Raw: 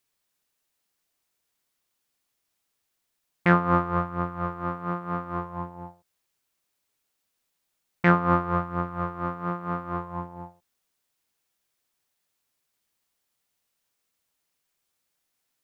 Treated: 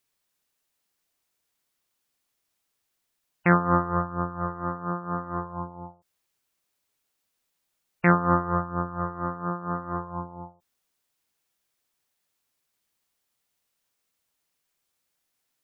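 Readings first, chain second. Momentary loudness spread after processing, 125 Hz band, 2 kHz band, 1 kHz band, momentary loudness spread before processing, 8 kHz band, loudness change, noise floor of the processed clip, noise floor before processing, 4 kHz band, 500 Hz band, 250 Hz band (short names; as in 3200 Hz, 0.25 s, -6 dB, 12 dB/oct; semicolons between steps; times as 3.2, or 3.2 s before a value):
16 LU, 0.0 dB, -0.5 dB, 0.0 dB, 16 LU, n/a, 0.0 dB, -79 dBFS, -79 dBFS, under -15 dB, 0.0 dB, 0.0 dB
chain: spectral gate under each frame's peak -25 dB strong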